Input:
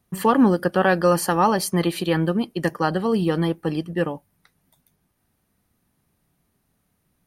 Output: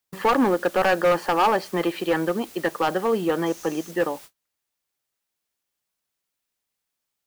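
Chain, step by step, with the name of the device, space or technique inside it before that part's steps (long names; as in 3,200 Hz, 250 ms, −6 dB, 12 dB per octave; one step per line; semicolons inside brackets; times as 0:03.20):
aircraft radio (band-pass filter 370–2,300 Hz; hard clipping −17.5 dBFS, distortion −10 dB; white noise bed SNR 21 dB; noise gate −43 dBFS, range −36 dB)
0:03.46–0:03.91: parametric band 6,200 Hz +12 dB 0.33 octaves
level +3 dB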